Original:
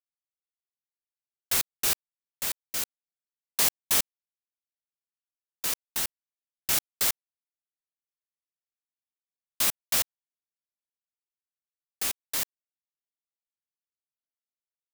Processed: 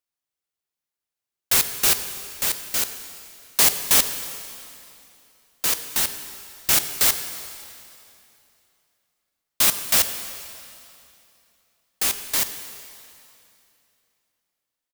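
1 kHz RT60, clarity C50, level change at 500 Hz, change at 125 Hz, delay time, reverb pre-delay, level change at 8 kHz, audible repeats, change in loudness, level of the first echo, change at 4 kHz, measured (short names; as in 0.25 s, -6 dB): 2.7 s, 9.5 dB, +8.0 dB, +7.5 dB, 91 ms, 5 ms, +7.5 dB, 1, +7.0 dB, -20.0 dB, +7.5 dB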